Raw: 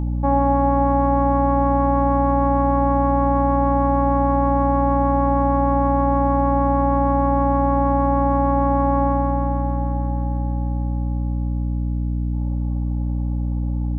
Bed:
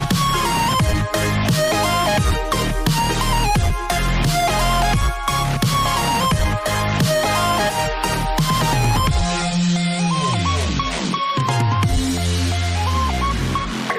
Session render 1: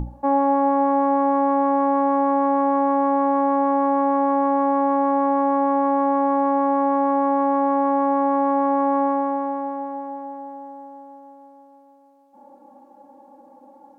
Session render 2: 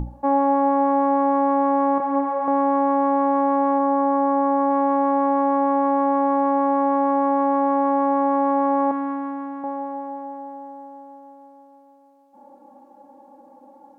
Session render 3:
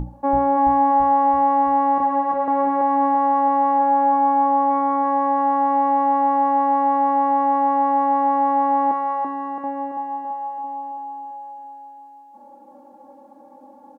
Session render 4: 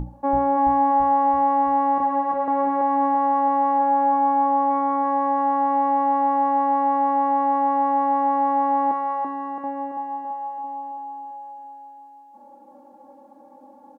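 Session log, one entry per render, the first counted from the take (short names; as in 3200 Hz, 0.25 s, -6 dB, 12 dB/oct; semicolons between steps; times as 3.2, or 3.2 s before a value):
notches 60/120/180/240/300/360 Hz
1.98–2.48 detuned doubles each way 16 cents; 3.78–4.69 LPF 1700 Hz -> 2100 Hz; 8.91–9.64 EQ curve 240 Hz 0 dB, 630 Hz -14 dB, 1400 Hz -1 dB
doubler 23 ms -12 dB; feedback echo 0.334 s, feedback 58%, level -3.5 dB
gain -2 dB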